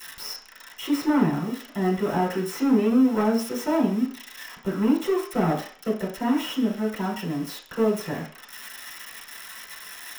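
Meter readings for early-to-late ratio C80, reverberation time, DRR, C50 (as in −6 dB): 12.0 dB, 0.45 s, −6.0 dB, 7.5 dB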